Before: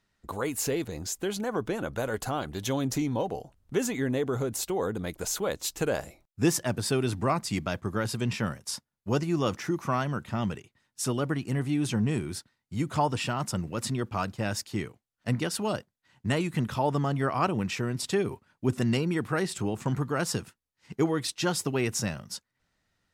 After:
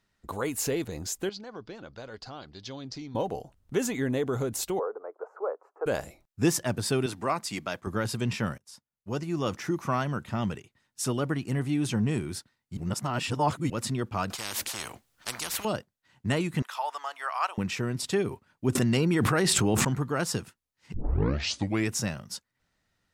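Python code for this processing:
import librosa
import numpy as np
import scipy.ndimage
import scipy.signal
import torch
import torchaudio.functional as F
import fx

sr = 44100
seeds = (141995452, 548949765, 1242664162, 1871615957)

y = fx.ladder_lowpass(x, sr, hz=5100.0, resonance_pct=75, at=(1.29, 3.15))
y = fx.ellip_bandpass(y, sr, low_hz=420.0, high_hz=1300.0, order=3, stop_db=50, at=(4.79, 5.86))
y = fx.highpass(y, sr, hz=400.0, slope=6, at=(7.06, 7.87))
y = fx.spectral_comp(y, sr, ratio=10.0, at=(14.3, 15.65))
y = fx.highpass(y, sr, hz=790.0, slope=24, at=(16.62, 17.58))
y = fx.env_flatten(y, sr, amount_pct=100, at=(18.75, 19.85))
y = fx.edit(y, sr, fx.fade_in_from(start_s=8.58, length_s=1.13, floor_db=-23.0),
    fx.reverse_span(start_s=12.77, length_s=0.93),
    fx.tape_start(start_s=20.94, length_s=0.98), tone=tone)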